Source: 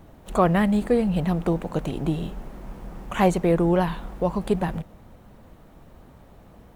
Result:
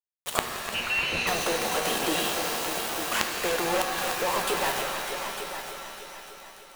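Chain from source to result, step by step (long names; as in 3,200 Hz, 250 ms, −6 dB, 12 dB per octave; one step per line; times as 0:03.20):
high-pass filter 540 Hz 12 dB per octave
spectral tilt +2.5 dB per octave
in parallel at +1 dB: downward compressor 12 to 1, threshold −39 dBFS, peak gain reduction 22.5 dB
on the sum: log-companded quantiser 2 bits
gate with flip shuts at −12 dBFS, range −28 dB
on a send: echo machine with several playback heads 300 ms, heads all three, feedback 42%, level −12.5 dB
0:00.74–0:01.27: on the sum: voice inversion scrambler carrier 3,200 Hz
reverb with rising layers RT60 2 s, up +7 semitones, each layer −2 dB, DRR 5 dB
level −1.5 dB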